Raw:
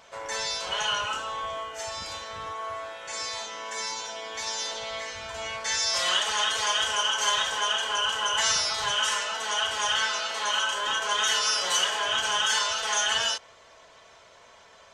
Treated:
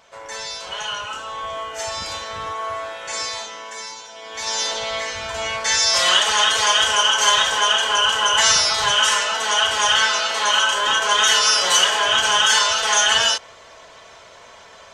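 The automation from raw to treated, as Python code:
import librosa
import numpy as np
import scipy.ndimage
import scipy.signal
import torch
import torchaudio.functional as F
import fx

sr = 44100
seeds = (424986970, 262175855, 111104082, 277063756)

y = fx.gain(x, sr, db=fx.line((1.07, 0.0), (1.79, 7.5), (3.18, 7.5), (4.09, -3.5), (4.56, 9.0)))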